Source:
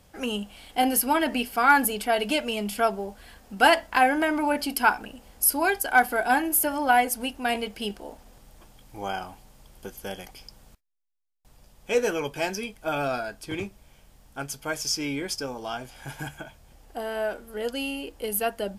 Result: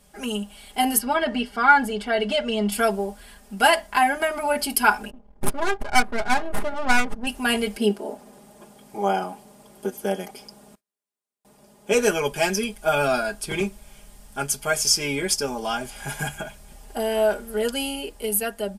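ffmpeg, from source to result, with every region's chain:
-filter_complex "[0:a]asettb=1/sr,asplit=3[s0][s1][s2];[s0]atrim=end=0.984[s3];[s1]atrim=start=0.98:end=2.72,asetpts=PTS-STARTPTS,afade=t=in:d=0.004:c=qsin,afade=t=out:st=1.736:d=0.004:c=qsin,lowpass=4000,bandreject=f=2500:w=6.5[s4];[s2]atrim=start=2.716[s5];[s3][s4]acrossfade=d=0.004:c1=hsin:c2=qsin[s6];[s6][s5]acrossfade=d=0.004:c1=qsin:c2=hsin,asettb=1/sr,asplit=3[s7][s8][s9];[s7]atrim=end=5.104[s10];[s8]atrim=start=5.1:end=7.27,asetpts=PTS-STARTPTS,afade=t=in:d=0.004:c=qsin,afade=t=out:st=2.166:d=0.004:c=qsin,bass=f=250:g=0,treble=f=4000:g=5,aeval=exprs='max(val(0),0)':c=same,adynamicsmooth=sensitivity=2:basefreq=730[s11];[s9]atrim=start=7.266[s12];[s10][s11]acrossfade=d=0.004:c1=hsin:c2=qsin[s13];[s13][s12]acrossfade=d=0.004:c1=qsin:c2=hsin,asettb=1/sr,asplit=3[s14][s15][s16];[s14]atrim=end=7.774[s17];[s15]atrim=start=7.77:end=11.92,asetpts=PTS-STARTPTS,afade=t=in:d=0.004:c=qsin,afade=t=out:st=4.146:d=0.004:c=qsin,highpass=240,tiltshelf=f=970:g=7[s18];[s16]atrim=start=11.916[s19];[s17][s18]acrossfade=d=0.004:c1=hsin:c2=qsin[s20];[s20][s19]acrossfade=d=0.004:c1=qsin:c2=hsin,equalizer=f=9100:t=o:w=0.73:g=7.5,aecho=1:1:4.9:0.9,dynaudnorm=f=120:g=13:m=2.24,volume=0.75"

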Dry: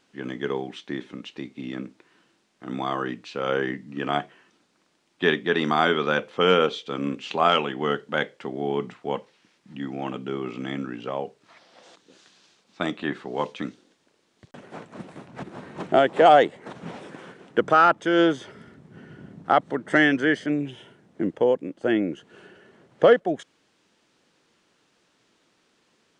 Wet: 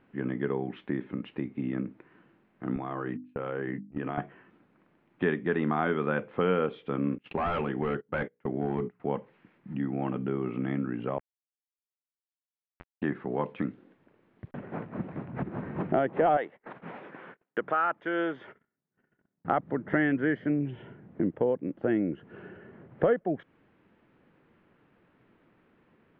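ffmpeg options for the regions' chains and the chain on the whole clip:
-filter_complex "[0:a]asettb=1/sr,asplit=3[s0][s1][s2];[s0]atrim=end=2.764[s3];[s1]atrim=start=2.76:end=4.18,asetpts=PTS-STARTPTS,afade=t=in:d=0.004:c=qsin,afade=t=out:st=1.416:d=0.004:c=qsin,agate=range=0.0251:threshold=0.0141:ratio=16:release=100:detection=peak,bandreject=f=50:t=h:w=6,bandreject=f=100:t=h:w=6,bandreject=f=150:t=h:w=6,bandreject=f=200:t=h:w=6,bandreject=f=250:t=h:w=6,bandreject=f=300:t=h:w=6,acompressor=threshold=0.0251:ratio=3:attack=3.2:release=140:knee=1:detection=peak[s4];[s2]atrim=start=4.176[s5];[s3][s4]acrossfade=d=0.004:c1=hsin:c2=qsin[s6];[s6][s5]acrossfade=d=0.004:c1=qsin:c2=hsin,asettb=1/sr,asplit=3[s7][s8][s9];[s7]atrim=end=7.184[s10];[s8]atrim=start=7.18:end=9,asetpts=PTS-STARTPTS,afade=t=in:d=0.004:c=qsin,afade=t=out:st=1.816:d=0.004:c=qsin,bandreject=f=60:t=h:w=6,bandreject=f=120:t=h:w=6,bandreject=f=180:t=h:w=6,bandreject=f=240:t=h:w=6,bandreject=f=300:t=h:w=6,bandreject=f=360:t=h:w=6,bandreject=f=420:t=h:w=6,bandreject=f=480:t=h:w=6,agate=range=0.0501:threshold=0.0158:ratio=16:release=100:detection=peak,asoftclip=type=hard:threshold=0.075[s11];[s9]atrim=start=8.996[s12];[s10][s11]acrossfade=d=0.004:c1=hsin:c2=qsin[s13];[s13][s12]acrossfade=d=0.004:c1=qsin:c2=hsin,asettb=1/sr,asplit=3[s14][s15][s16];[s14]atrim=end=11.184[s17];[s15]atrim=start=11.18:end=13.02,asetpts=PTS-STARTPTS,afade=t=in:d=0.004:c=qsin,afade=t=out:st=1.836:d=0.004:c=qsin,tremolo=f=200:d=0.75,acompressor=threshold=0.00708:ratio=6:attack=3.2:release=140:knee=1:detection=peak,aeval=exprs='val(0)*gte(abs(val(0)),0.0211)':c=same[s18];[s16]atrim=start=13.016[s19];[s17][s18]acrossfade=d=0.004:c1=hsin:c2=qsin[s20];[s20][s19]acrossfade=d=0.004:c1=qsin:c2=hsin,asettb=1/sr,asplit=3[s21][s22][s23];[s21]atrim=end=16.374[s24];[s22]atrim=start=16.37:end=19.45,asetpts=PTS-STARTPTS,afade=t=in:d=0.004:c=qsin,afade=t=out:st=3.076:d=0.004:c=qsin,highpass=f=1000:p=1,agate=range=0.0224:threshold=0.00282:ratio=16:release=100:detection=peak[s25];[s23]atrim=start=19.446[s26];[s24][s25]acrossfade=d=0.004:c1=hsin:c2=qsin[s27];[s27][s26]acrossfade=d=0.004:c1=qsin:c2=hsin,lowpass=f=2300:w=0.5412,lowpass=f=2300:w=1.3066,lowshelf=f=240:g=11.5,acompressor=threshold=0.0316:ratio=2"

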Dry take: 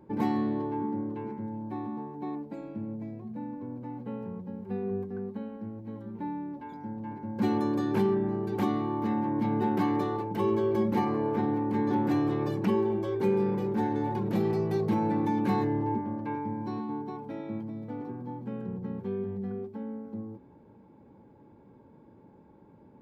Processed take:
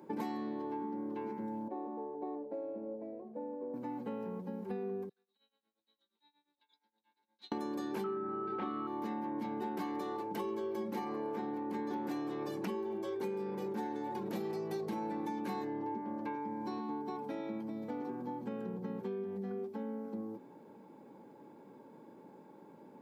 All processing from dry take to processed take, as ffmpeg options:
-filter_complex "[0:a]asettb=1/sr,asplit=3[s0][s1][s2];[s0]atrim=end=1.684[s3];[s1]atrim=start=1.68:end=3.74,asetpts=PTS-STARTPTS,afade=t=in:d=0.004:c=qsin,afade=t=out:st=2.056:d=0.004:c=qsin,bandpass=f=520:t=q:w=3.2,acontrast=39[s4];[s2]atrim=start=3.736[s5];[s3][s4]acrossfade=d=0.004:c1=hsin:c2=qsin[s6];[s6][s5]acrossfade=d=0.004:c1=qsin:c2=hsin,asettb=1/sr,asplit=3[s7][s8][s9];[s7]atrim=end=5.094[s10];[s8]atrim=start=5.09:end=7.52,asetpts=PTS-STARTPTS,afade=t=in:d=0.004:c=qsin,afade=t=out:st=2.426:d=0.004:c=qsin,bandpass=f=3800:t=q:w=13,tremolo=f=8.5:d=0.88[s11];[s9]atrim=start=7.516[s12];[s10][s11]acrossfade=d=0.004:c1=hsin:c2=qsin[s13];[s13][s12]acrossfade=d=0.004:c1=qsin:c2=hsin,asettb=1/sr,asplit=3[s14][s15][s16];[s14]atrim=end=8.044[s17];[s15]atrim=start=8.04:end=8.87,asetpts=PTS-STARTPTS,afade=t=in:d=0.004:c=qsin,afade=t=out:st=0.826:d=0.004:c=qsin,lowpass=f=3200:w=0.5412,lowpass=f=3200:w=1.3066,aeval=exprs='val(0)+0.0355*sin(2*PI*1300*n/s)':c=same,asplit=2[s18][s19];[s19]adelay=28,volume=0.398[s20];[s18][s20]amix=inputs=2:normalize=0,atrim=end_sample=36603[s21];[s16]atrim=start=8.866[s22];[s17][s21]acrossfade=d=0.004:c1=hsin:c2=qsin[s23];[s23][s22]acrossfade=d=0.004:c1=qsin:c2=hsin,highpass=f=150:w=0.5412,highpass=f=150:w=1.3066,bass=f=250:g=-7,treble=f=4000:g=7,acompressor=threshold=0.0112:ratio=6,volume=1.41"

